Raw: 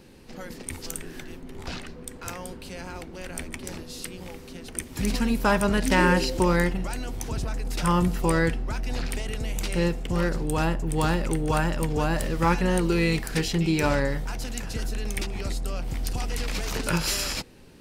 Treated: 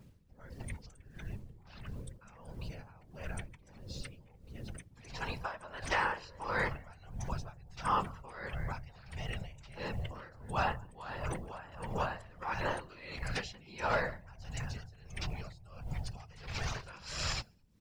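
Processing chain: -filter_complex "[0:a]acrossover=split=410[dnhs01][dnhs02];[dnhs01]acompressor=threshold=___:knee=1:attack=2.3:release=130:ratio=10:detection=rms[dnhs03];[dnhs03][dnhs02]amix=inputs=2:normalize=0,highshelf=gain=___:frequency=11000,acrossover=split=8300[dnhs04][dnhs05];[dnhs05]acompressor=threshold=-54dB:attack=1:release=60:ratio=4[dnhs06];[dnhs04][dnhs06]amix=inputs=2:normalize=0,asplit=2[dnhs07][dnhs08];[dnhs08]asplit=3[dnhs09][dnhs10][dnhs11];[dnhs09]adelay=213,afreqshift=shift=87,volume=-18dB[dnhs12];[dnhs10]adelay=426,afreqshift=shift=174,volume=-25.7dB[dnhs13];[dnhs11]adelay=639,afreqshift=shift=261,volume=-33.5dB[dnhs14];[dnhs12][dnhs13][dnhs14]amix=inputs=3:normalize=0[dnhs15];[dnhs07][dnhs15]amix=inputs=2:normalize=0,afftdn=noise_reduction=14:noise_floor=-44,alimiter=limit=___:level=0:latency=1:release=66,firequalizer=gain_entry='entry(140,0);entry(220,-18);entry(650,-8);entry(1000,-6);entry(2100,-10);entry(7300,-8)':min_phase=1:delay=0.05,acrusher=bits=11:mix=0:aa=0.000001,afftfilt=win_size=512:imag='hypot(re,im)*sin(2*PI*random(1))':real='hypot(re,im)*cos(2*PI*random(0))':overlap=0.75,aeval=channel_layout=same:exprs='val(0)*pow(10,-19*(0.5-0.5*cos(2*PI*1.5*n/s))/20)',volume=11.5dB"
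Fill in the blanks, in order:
-37dB, -9.5, -15dB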